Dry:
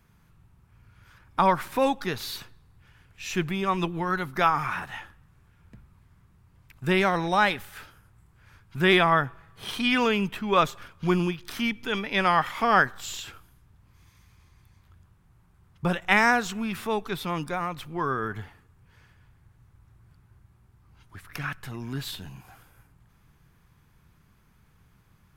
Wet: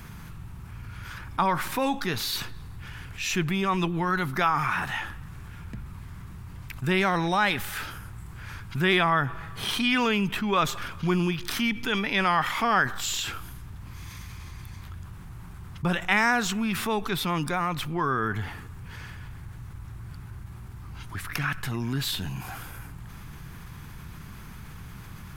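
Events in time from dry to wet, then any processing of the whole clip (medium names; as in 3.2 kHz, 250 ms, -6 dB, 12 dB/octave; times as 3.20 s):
1.43–2.33 s: feedback comb 55 Hz, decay 0.2 s, mix 40%
whole clip: peaking EQ 530 Hz -4.5 dB 1 oct; level flattener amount 50%; trim -2.5 dB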